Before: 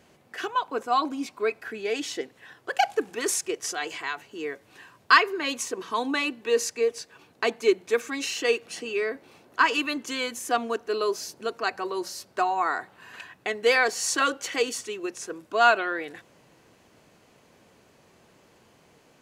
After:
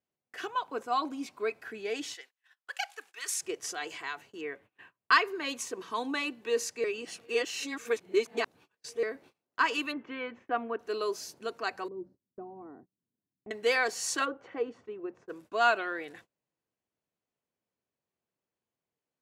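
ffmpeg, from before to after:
ffmpeg -i in.wav -filter_complex "[0:a]asettb=1/sr,asplit=3[link_01][link_02][link_03];[link_01]atrim=end=2.144[link_04];[link_02]atrim=start=2.14:end=3.41,asetpts=PTS-STARTPTS,afade=type=in:duration=0.004:curve=qsin,afade=type=out:start_time=1.266:duration=0.004:curve=qsin,highpass=1400[link_05];[link_03]atrim=start=3.406[link_06];[link_04][link_05]acrossfade=duration=0.004:curve1=hsin:curve2=qsin[link_07];[link_07][link_06]acrossfade=duration=0.004:curve1=qsin:curve2=hsin,asettb=1/sr,asplit=3[link_08][link_09][link_10];[link_08]atrim=end=4.414[link_11];[link_09]atrim=start=4.41:end=5.12,asetpts=PTS-STARTPTS,afade=type=in:duration=0.004:curve=qsin,afade=type=out:start_time=0.706:duration=0.004:curve=qsin,highshelf=frequency=3700:width_type=q:width=1.5:gain=-11[link_12];[link_10]atrim=start=5.116[link_13];[link_11][link_12]acrossfade=duration=0.004:curve1=hsin:curve2=qsin[link_14];[link_14][link_13]acrossfade=duration=0.004:curve1=qsin:curve2=hsin,asplit=3[link_15][link_16][link_17];[link_15]afade=type=out:start_time=9.91:duration=0.02[link_18];[link_16]lowpass=frequency=2400:width=0.5412,lowpass=frequency=2400:width=1.3066,afade=type=in:start_time=9.91:duration=0.02,afade=type=out:start_time=10.78:duration=0.02[link_19];[link_17]afade=type=in:start_time=10.78:duration=0.02[link_20];[link_18][link_19][link_20]amix=inputs=3:normalize=0,asettb=1/sr,asplit=3[link_21][link_22][link_23];[link_21]atrim=end=11.884[link_24];[link_22]atrim=start=11.88:end=13.51,asetpts=PTS-STARTPTS,afade=type=in:duration=0.004:curve=qsin,afade=type=out:start_time=1.626:duration=0.004:curve=qsin,lowpass=frequency=250:width_type=q:width=1.8[link_25];[link_23]atrim=start=13.506[link_26];[link_24][link_25]acrossfade=duration=0.004:curve1=hsin:curve2=qsin[link_27];[link_27][link_26]acrossfade=duration=0.004:curve1=qsin:curve2=hsin,asplit=3[link_28][link_29][link_30];[link_28]afade=type=out:start_time=14.24:duration=0.02[link_31];[link_29]lowpass=1100,afade=type=in:start_time=14.24:duration=0.02,afade=type=out:start_time=15.28:duration=0.02[link_32];[link_30]afade=type=in:start_time=15.28:duration=0.02[link_33];[link_31][link_32][link_33]amix=inputs=3:normalize=0,asplit=3[link_34][link_35][link_36];[link_34]atrim=end=6.842[link_37];[link_35]atrim=start=6.838:end=9.032,asetpts=PTS-STARTPTS,areverse[link_38];[link_36]atrim=start=9.028[link_39];[link_37][link_38]acrossfade=duration=0.004:curve1=hsin:curve2=hsin[link_40];[link_40][link_39]acrossfade=duration=0.004:curve1=hsin:curve2=hsin,agate=range=-28dB:threshold=-47dB:ratio=16:detection=peak,volume=-6dB" out.wav

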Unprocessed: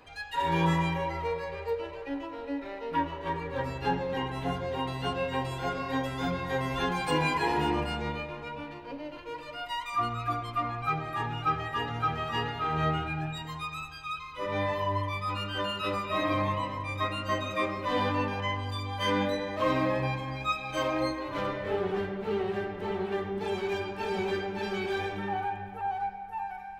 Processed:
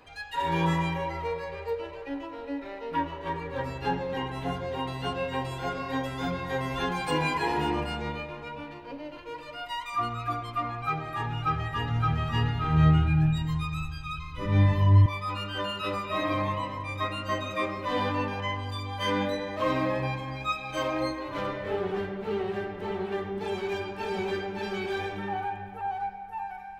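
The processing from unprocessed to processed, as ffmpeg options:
ffmpeg -i in.wav -filter_complex "[0:a]asettb=1/sr,asplit=3[link_01][link_02][link_03];[link_01]atrim=end=11.034[link_04];[link_02]atrim=start=11.03:end=15.06,asetpts=PTS-STARTPTS,afade=type=in:duration=0.004:curve=qsin,afade=type=out:start_time=4.026:duration=0.004:curve=qsin,asubboost=boost=11.5:cutoff=190[link_05];[link_03]atrim=start=15.056[link_06];[link_04][link_05]acrossfade=duration=0.004:curve1=hsin:curve2=qsin[link_07];[link_07][link_06]acrossfade=duration=0.004:curve1=qsin:curve2=hsin" out.wav

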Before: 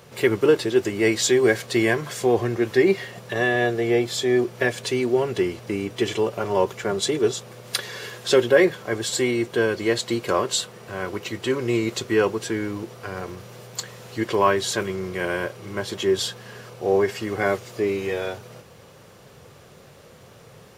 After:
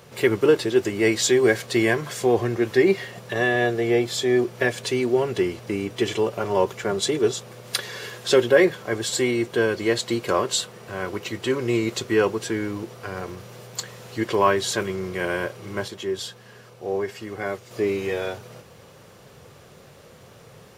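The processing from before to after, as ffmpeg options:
ffmpeg -i in.wav -filter_complex "[0:a]asplit=3[link_01][link_02][link_03];[link_01]atrim=end=15.882[link_04];[link_02]atrim=start=15.878:end=17.712,asetpts=PTS-STARTPTS,volume=-6.5dB[link_05];[link_03]atrim=start=17.708[link_06];[link_04][link_05]acrossfade=duration=0.004:curve1=hsin:curve2=hsin[link_07];[link_07][link_06]acrossfade=duration=0.004:curve1=hsin:curve2=hsin" out.wav

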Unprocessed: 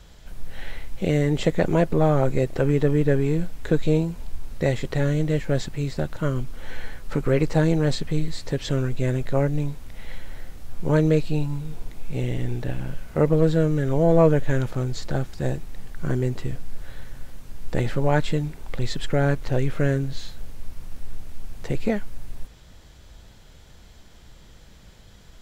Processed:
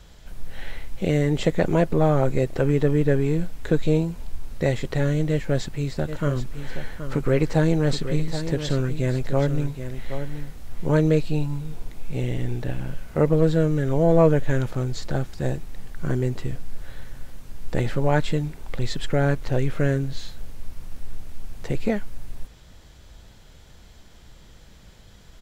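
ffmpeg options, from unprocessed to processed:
ffmpeg -i in.wav -filter_complex "[0:a]asplit=3[link_01][link_02][link_03];[link_01]afade=type=out:start_time=6.07:duration=0.02[link_04];[link_02]aecho=1:1:775:0.316,afade=type=in:start_time=6.07:duration=0.02,afade=type=out:start_time=10.85:duration=0.02[link_05];[link_03]afade=type=in:start_time=10.85:duration=0.02[link_06];[link_04][link_05][link_06]amix=inputs=3:normalize=0" out.wav

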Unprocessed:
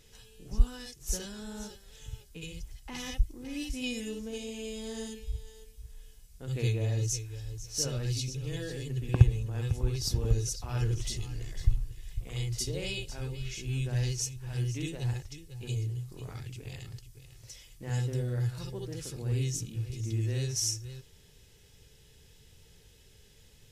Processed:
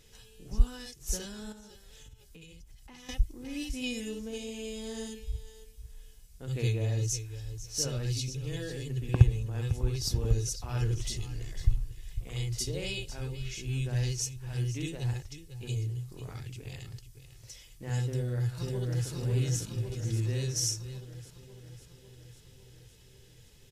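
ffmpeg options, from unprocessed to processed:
ffmpeg -i in.wav -filter_complex "[0:a]asettb=1/sr,asplit=3[link_01][link_02][link_03];[link_01]atrim=end=1.524[link_04];[link_02]atrim=start=1.52:end=3.09,asetpts=PTS-STARTPTS,afade=type=in:duration=0.004:curve=qsin,afade=type=out:start_time=1.566:duration=0.004:curve=qsin,acompressor=threshold=-47dB:ratio=10:attack=3.2:release=140:knee=1:detection=peak[link_05];[link_03]atrim=start=3.086[link_06];[link_04][link_05]acrossfade=duration=0.004:curve1=hsin:curve2=qsin[link_07];[link_07][link_06]acrossfade=duration=0.004:curve1=qsin:curve2=hsin,asplit=2[link_08][link_09];[link_09]afade=type=in:start_time=18.06:duration=0.01,afade=type=out:start_time=19.1:duration=0.01,aecho=0:1:550|1100|1650|2200|2750|3300|3850|4400|4950|5500|6050:0.794328|0.516313|0.335604|0.218142|0.141793|0.0921652|0.0599074|0.0389398|0.0253109|0.0164521|0.0106938[link_10];[link_08][link_10]amix=inputs=2:normalize=0" out.wav

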